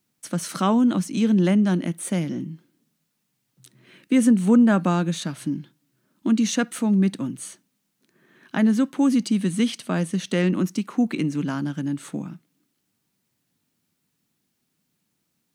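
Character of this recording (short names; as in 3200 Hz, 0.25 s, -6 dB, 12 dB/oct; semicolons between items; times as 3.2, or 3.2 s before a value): noise floor -75 dBFS; spectral tilt -6.0 dB/oct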